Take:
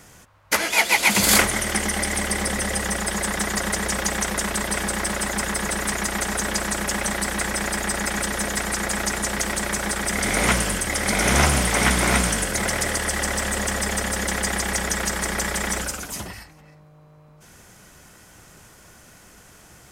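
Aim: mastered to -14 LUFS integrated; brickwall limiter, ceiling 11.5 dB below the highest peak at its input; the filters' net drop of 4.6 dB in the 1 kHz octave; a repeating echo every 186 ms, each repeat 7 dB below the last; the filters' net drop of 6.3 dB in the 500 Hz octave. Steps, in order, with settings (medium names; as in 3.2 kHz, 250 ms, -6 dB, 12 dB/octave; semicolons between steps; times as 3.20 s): peaking EQ 500 Hz -7 dB; peaking EQ 1 kHz -4 dB; peak limiter -15 dBFS; feedback delay 186 ms, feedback 45%, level -7 dB; trim +10.5 dB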